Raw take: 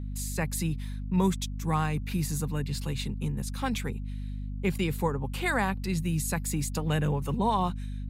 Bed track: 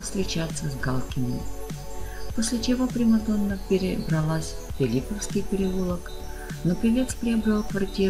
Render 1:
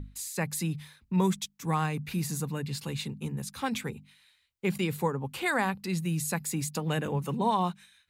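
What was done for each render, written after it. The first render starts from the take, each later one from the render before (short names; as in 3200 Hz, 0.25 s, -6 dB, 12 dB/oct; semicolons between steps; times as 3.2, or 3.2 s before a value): notches 50/100/150/200/250 Hz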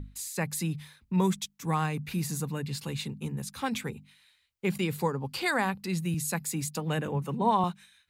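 4.99–5.51 bell 4700 Hz +14 dB 0.28 oct; 6.14–7.64 three-band expander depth 40%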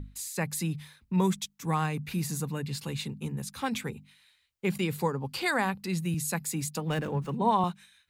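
6.9–7.3 running maximum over 3 samples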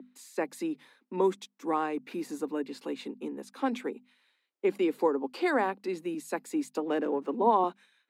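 steep high-pass 270 Hz 48 dB/oct; tilt -4.5 dB/oct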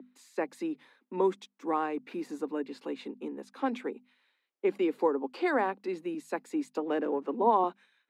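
LPF 3200 Hz 6 dB/oct; bell 72 Hz -10 dB 1.8 oct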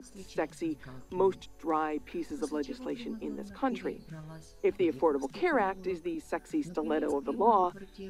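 add bed track -21 dB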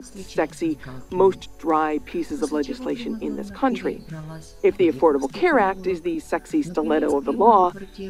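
gain +10 dB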